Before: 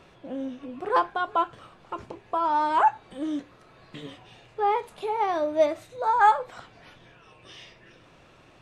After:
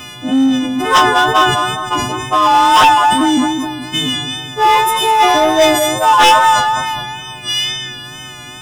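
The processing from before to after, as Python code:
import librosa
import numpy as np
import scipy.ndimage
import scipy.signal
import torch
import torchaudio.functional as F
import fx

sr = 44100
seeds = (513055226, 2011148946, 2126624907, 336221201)

p1 = fx.freq_snap(x, sr, grid_st=3)
p2 = fx.graphic_eq_31(p1, sr, hz=(125, 250, 500, 3150), db=(11, 10, -12, 10))
p3 = p2 + fx.echo_feedback(p2, sr, ms=208, feedback_pct=43, wet_db=-8.5, dry=0)
p4 = fx.fold_sine(p3, sr, drive_db=8, ceiling_db=-6.5)
p5 = fx.wow_flutter(p4, sr, seeds[0], rate_hz=2.1, depth_cents=35.0)
p6 = np.clip(p5, -10.0 ** (-20.5 / 20.0), 10.0 ** (-20.5 / 20.0))
p7 = p5 + (p6 * librosa.db_to_amplitude(-6.0))
p8 = fx.high_shelf(p7, sr, hz=6100.0, db=10.0)
p9 = fx.notch(p8, sr, hz=4300.0, q=6.5)
p10 = fx.sustainer(p9, sr, db_per_s=43.0)
y = p10 * librosa.db_to_amplitude(1.0)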